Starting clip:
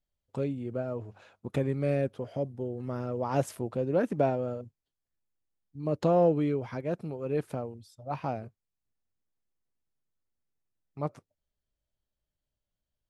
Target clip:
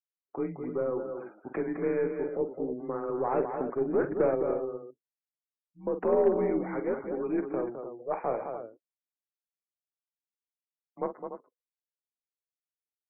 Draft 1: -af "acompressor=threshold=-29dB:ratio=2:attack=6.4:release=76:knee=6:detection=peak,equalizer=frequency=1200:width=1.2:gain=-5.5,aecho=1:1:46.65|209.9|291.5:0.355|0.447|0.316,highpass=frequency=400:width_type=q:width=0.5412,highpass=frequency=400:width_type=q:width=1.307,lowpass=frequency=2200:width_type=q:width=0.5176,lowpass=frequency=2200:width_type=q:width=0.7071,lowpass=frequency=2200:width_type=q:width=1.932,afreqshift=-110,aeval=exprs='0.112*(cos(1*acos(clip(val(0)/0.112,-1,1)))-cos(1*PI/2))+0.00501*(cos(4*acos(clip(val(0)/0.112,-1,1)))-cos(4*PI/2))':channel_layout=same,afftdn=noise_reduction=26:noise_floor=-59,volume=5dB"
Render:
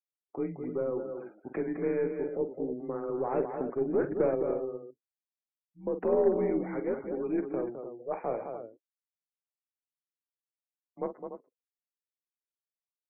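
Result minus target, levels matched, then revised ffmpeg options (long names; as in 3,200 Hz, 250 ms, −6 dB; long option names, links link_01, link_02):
1,000 Hz band −2.5 dB
-af "acompressor=threshold=-29dB:ratio=2:attack=6.4:release=76:knee=6:detection=peak,aecho=1:1:46.65|209.9|291.5:0.355|0.447|0.316,highpass=frequency=400:width_type=q:width=0.5412,highpass=frequency=400:width_type=q:width=1.307,lowpass=frequency=2200:width_type=q:width=0.5176,lowpass=frequency=2200:width_type=q:width=0.7071,lowpass=frequency=2200:width_type=q:width=1.932,afreqshift=-110,aeval=exprs='0.112*(cos(1*acos(clip(val(0)/0.112,-1,1)))-cos(1*PI/2))+0.00501*(cos(4*acos(clip(val(0)/0.112,-1,1)))-cos(4*PI/2))':channel_layout=same,afftdn=noise_reduction=26:noise_floor=-59,volume=5dB"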